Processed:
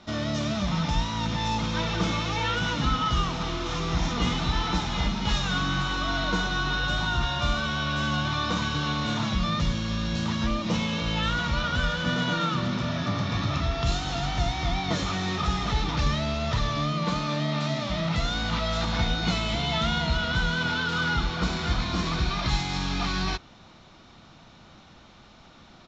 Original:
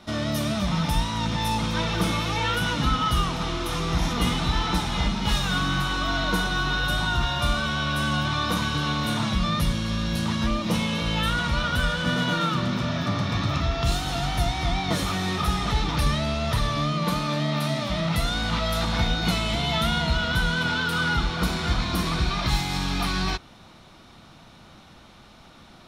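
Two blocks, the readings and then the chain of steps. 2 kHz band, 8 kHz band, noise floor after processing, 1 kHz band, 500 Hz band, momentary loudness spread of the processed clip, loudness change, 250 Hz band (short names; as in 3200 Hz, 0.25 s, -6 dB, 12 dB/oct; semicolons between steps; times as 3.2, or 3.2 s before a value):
-2.0 dB, -4.0 dB, -52 dBFS, -2.0 dB, -2.0 dB, 3 LU, -2.0 dB, -2.0 dB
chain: downsampling 16000 Hz; gain -2 dB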